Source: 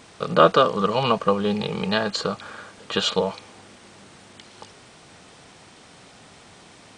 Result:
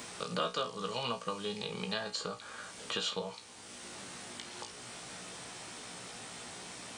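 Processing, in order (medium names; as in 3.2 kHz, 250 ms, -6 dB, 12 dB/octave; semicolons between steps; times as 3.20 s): pre-emphasis filter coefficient 0.8; feedback comb 60 Hz, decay 0.19 s, harmonics all, mix 90%; three bands compressed up and down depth 70%; trim +3 dB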